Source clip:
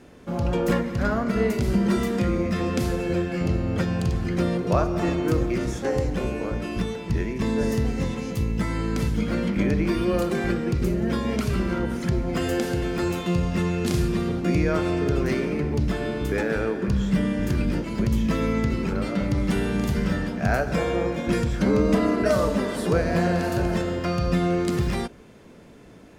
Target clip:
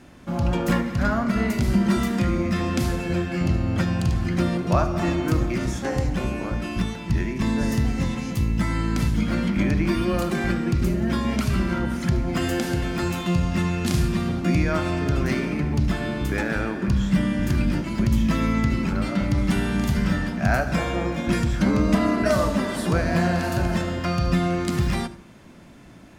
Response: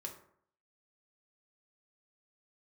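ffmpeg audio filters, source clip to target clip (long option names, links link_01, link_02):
-filter_complex "[0:a]equalizer=frequency=450:width=3.2:gain=-11.5,asplit=2[link_01][link_02];[1:a]atrim=start_sample=2205,adelay=73[link_03];[link_02][link_03]afir=irnorm=-1:irlink=0,volume=-13.5dB[link_04];[link_01][link_04]amix=inputs=2:normalize=0,volume=2.5dB"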